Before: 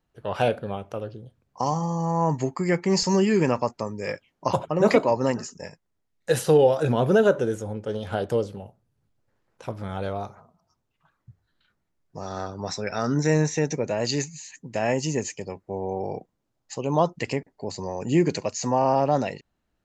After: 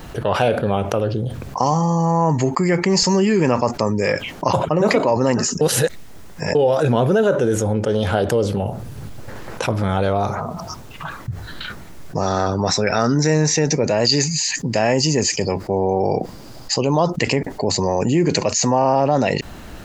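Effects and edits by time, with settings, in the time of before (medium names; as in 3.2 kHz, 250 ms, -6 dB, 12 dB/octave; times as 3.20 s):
5.61–6.55 s: reverse
13.09–17.12 s: peaking EQ 4.8 kHz +12 dB 0.22 oct
whole clip: level flattener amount 70%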